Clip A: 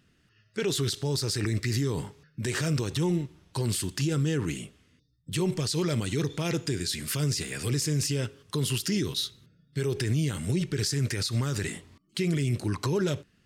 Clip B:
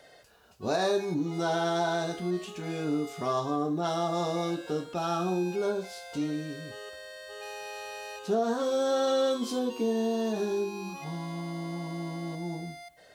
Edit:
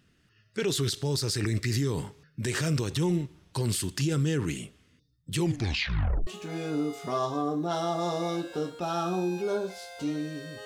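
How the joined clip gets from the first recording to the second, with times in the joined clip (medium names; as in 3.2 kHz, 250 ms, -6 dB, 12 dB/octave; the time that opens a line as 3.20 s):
clip A
5.38 s: tape stop 0.89 s
6.27 s: go over to clip B from 2.41 s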